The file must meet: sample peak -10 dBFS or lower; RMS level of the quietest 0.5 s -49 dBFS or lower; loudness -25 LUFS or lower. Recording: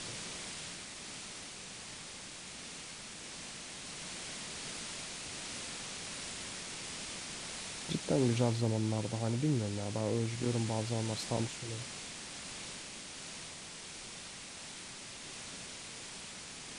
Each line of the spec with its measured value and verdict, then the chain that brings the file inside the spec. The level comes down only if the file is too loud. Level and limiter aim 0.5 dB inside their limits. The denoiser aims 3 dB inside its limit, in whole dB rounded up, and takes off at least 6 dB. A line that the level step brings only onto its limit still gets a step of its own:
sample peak -16.5 dBFS: pass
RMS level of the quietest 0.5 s -47 dBFS: fail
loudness -38.5 LUFS: pass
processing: noise reduction 6 dB, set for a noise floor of -47 dBFS

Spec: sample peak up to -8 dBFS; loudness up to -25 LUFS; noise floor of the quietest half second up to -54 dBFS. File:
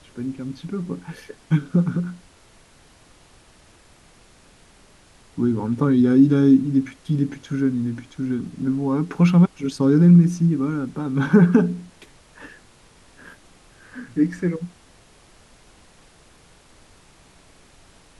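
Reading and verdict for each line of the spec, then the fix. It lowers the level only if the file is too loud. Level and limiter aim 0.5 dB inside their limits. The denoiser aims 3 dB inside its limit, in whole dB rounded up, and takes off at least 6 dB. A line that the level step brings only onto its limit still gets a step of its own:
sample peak -4.0 dBFS: fail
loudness -20.0 LUFS: fail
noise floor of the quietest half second -52 dBFS: fail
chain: trim -5.5 dB

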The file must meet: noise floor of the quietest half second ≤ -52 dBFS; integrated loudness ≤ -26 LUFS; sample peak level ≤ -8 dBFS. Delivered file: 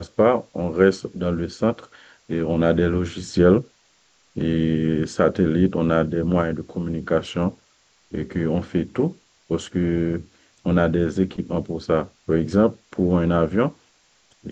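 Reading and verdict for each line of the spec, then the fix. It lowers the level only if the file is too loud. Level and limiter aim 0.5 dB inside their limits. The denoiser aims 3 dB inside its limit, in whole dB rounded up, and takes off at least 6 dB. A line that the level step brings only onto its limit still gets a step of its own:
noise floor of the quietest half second -60 dBFS: pass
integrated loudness -22.0 LUFS: fail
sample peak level -4.0 dBFS: fail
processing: trim -4.5 dB

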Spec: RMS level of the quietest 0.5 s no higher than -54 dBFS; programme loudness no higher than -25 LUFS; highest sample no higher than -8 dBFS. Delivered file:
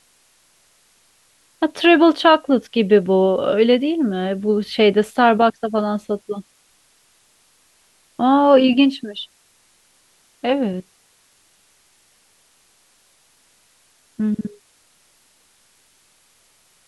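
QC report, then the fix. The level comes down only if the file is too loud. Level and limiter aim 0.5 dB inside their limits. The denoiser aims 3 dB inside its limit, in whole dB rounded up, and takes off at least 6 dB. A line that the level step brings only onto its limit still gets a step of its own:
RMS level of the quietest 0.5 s -58 dBFS: pass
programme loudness -17.0 LUFS: fail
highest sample -2.5 dBFS: fail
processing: trim -8.5 dB

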